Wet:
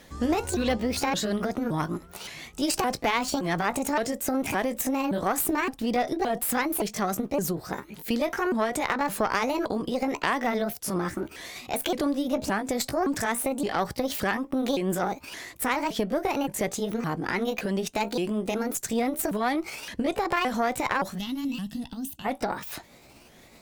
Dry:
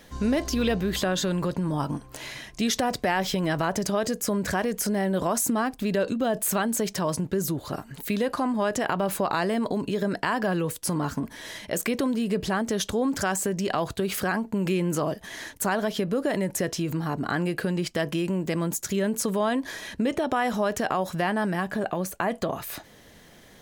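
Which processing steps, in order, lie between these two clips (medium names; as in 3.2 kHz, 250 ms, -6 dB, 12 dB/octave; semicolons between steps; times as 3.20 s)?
sawtooth pitch modulation +7 st, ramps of 568 ms; Chebyshev shaper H 2 -8 dB, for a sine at -11 dBFS; time-frequency box 21.18–22.25 s, 310–2600 Hz -20 dB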